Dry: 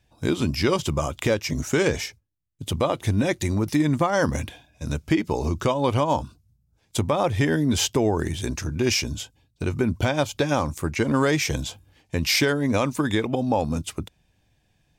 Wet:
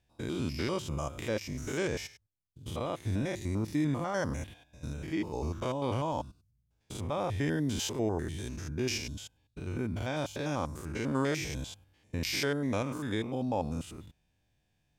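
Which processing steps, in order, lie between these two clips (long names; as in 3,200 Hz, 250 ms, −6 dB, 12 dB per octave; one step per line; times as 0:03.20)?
spectrum averaged block by block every 100 ms
level −8 dB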